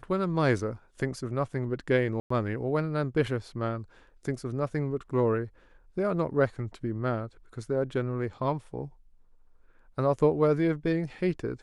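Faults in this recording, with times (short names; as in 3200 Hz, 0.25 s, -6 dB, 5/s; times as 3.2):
2.2–2.3 gap 0.104 s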